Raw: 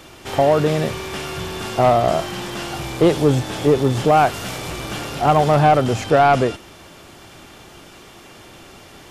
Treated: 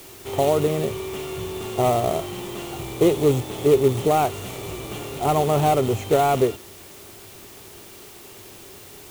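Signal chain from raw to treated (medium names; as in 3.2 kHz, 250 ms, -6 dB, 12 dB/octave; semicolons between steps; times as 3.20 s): companded quantiser 4-bit; graphic EQ with 31 bands 100 Hz +7 dB, 400 Hz +10 dB, 1.6 kHz -11 dB, 5 kHz -10 dB; added noise white -39 dBFS; trim -6.5 dB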